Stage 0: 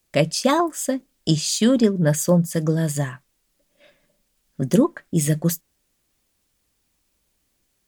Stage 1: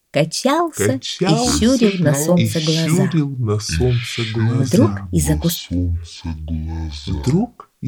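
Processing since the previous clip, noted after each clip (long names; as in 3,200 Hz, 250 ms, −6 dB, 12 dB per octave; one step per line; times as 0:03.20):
delay with pitch and tempo change per echo 573 ms, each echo −6 semitones, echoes 2
level +2.5 dB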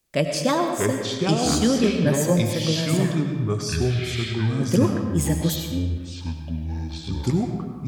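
comb and all-pass reverb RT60 1.5 s, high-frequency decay 0.7×, pre-delay 55 ms, DRR 5 dB
level −6 dB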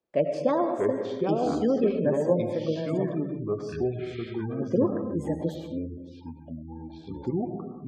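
gate on every frequency bin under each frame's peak −30 dB strong
resonant band-pass 500 Hz, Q 1.1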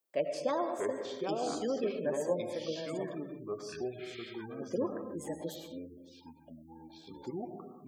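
RIAA equalisation recording
level −5.5 dB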